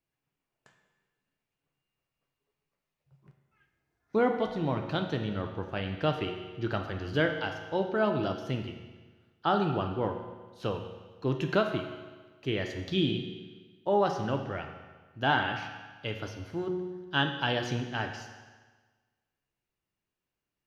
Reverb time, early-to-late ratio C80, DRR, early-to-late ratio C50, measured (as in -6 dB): 1.4 s, 8.0 dB, 4.0 dB, 6.5 dB